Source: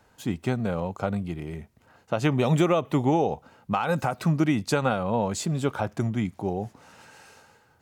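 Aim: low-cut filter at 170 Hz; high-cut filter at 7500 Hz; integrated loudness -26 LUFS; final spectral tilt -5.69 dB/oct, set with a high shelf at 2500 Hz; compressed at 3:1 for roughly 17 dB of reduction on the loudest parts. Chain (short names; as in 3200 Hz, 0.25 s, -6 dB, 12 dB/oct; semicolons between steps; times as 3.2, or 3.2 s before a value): HPF 170 Hz; LPF 7500 Hz; high shelf 2500 Hz -3.5 dB; compressor 3:1, threshold -43 dBFS; gain +17 dB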